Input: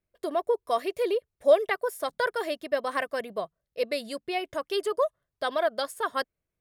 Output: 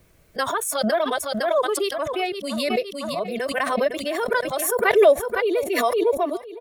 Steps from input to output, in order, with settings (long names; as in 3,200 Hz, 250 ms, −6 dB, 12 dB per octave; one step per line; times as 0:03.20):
played backwards from end to start
noise reduction from a noise print of the clip's start 15 dB
repeating echo 509 ms, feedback 37%, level −18 dB
background raised ahead of every attack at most 31 dB per second
level +3.5 dB